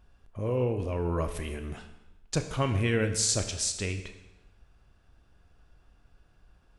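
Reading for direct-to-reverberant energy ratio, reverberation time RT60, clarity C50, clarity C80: 7.0 dB, 0.95 s, 10.0 dB, 12.0 dB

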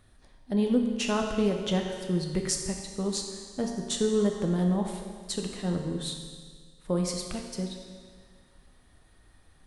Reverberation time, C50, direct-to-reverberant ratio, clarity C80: 1.8 s, 4.0 dB, 2.0 dB, 5.5 dB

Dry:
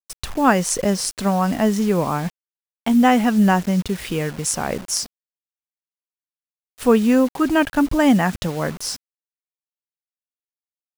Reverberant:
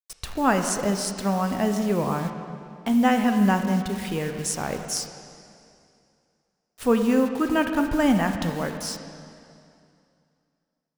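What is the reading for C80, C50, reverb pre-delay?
7.5 dB, 6.5 dB, 8 ms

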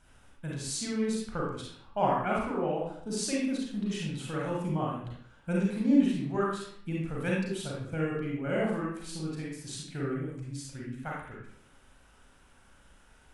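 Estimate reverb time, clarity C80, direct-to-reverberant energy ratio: 0.65 s, 4.0 dB, −4.5 dB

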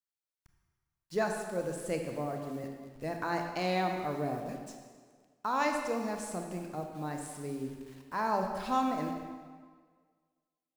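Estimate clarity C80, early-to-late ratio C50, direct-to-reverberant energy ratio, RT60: 5.5 dB, 4.0 dB, 3.0 dB, 1.7 s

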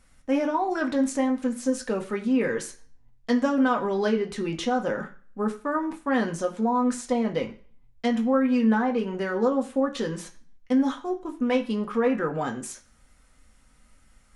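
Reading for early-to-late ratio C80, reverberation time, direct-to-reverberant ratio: 18.0 dB, non-exponential decay, 1.5 dB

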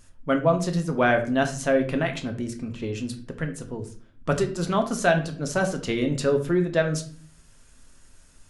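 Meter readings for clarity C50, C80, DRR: 11.5 dB, 15.5 dB, 4.0 dB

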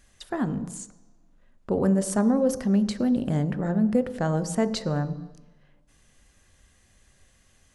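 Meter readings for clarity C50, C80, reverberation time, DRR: 14.0 dB, 16.0 dB, 1.1 s, 10.0 dB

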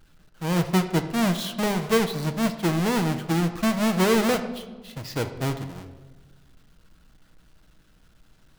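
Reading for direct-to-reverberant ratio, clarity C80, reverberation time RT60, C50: 6.0 dB, 12.5 dB, 1.4 s, 10.5 dB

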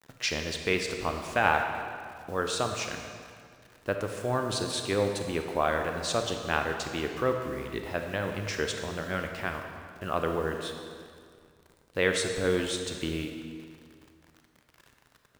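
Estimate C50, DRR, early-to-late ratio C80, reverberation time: 5.0 dB, 4.0 dB, 6.0 dB, 2.1 s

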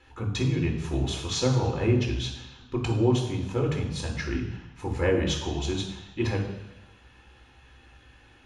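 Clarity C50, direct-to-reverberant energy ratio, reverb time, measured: 6.5 dB, −0.5 dB, 1.1 s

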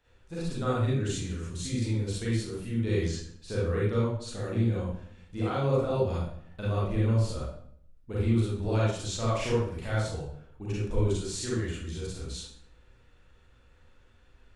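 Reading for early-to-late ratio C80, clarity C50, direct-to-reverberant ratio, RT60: 4.0 dB, −2.0 dB, −8.0 dB, 0.60 s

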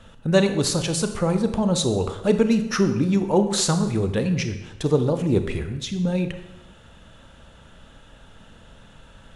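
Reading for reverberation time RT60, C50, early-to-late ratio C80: 1.0 s, 10.0 dB, 12.0 dB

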